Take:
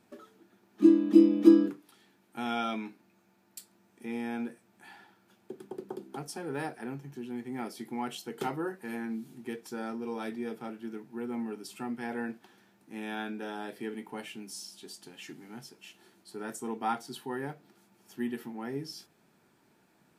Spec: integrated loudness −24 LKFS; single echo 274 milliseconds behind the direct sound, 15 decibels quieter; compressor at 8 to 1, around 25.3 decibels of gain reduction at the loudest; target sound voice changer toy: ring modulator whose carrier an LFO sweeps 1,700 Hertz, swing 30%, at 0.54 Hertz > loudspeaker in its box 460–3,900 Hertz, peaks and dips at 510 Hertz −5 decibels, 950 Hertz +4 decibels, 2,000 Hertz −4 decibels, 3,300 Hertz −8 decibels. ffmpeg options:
ffmpeg -i in.wav -af "acompressor=threshold=-41dB:ratio=8,aecho=1:1:274:0.178,aeval=exprs='val(0)*sin(2*PI*1700*n/s+1700*0.3/0.54*sin(2*PI*0.54*n/s))':channel_layout=same,highpass=460,equalizer=frequency=510:width_type=q:width=4:gain=-5,equalizer=frequency=950:width_type=q:width=4:gain=4,equalizer=frequency=2000:width_type=q:width=4:gain=-4,equalizer=frequency=3300:width_type=q:width=4:gain=-8,lowpass=frequency=3900:width=0.5412,lowpass=frequency=3900:width=1.3066,volume=25dB" out.wav

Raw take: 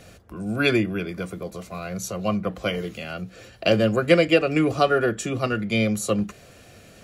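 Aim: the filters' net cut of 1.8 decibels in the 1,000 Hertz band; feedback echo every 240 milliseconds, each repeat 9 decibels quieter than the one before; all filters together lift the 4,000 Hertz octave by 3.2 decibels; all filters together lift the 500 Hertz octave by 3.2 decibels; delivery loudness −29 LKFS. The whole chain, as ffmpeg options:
ffmpeg -i in.wav -af "equalizer=frequency=500:width_type=o:gain=5,equalizer=frequency=1000:width_type=o:gain=-6,equalizer=frequency=4000:width_type=o:gain=5,aecho=1:1:240|480|720|960:0.355|0.124|0.0435|0.0152,volume=-8dB" out.wav

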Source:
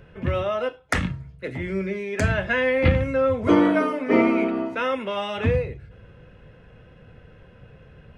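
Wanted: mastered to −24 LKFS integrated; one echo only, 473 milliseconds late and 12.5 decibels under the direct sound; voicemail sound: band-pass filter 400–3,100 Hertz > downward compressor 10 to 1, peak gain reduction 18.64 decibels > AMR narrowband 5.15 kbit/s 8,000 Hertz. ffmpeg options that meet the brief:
ffmpeg -i in.wav -af "highpass=400,lowpass=3100,aecho=1:1:473:0.237,acompressor=threshold=-35dB:ratio=10,volume=16.5dB" -ar 8000 -c:a libopencore_amrnb -b:a 5150 out.amr

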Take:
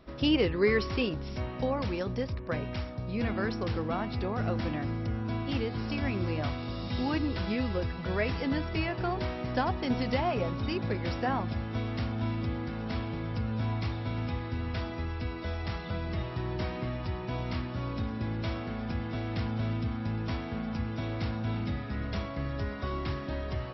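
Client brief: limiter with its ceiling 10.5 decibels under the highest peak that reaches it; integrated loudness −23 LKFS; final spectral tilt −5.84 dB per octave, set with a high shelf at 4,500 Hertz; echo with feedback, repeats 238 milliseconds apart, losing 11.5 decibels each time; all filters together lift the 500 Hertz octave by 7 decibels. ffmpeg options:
ffmpeg -i in.wav -af "equalizer=frequency=500:width_type=o:gain=8.5,highshelf=frequency=4500:gain=5.5,alimiter=limit=-19dB:level=0:latency=1,aecho=1:1:238|476|714:0.266|0.0718|0.0194,volume=7.5dB" out.wav

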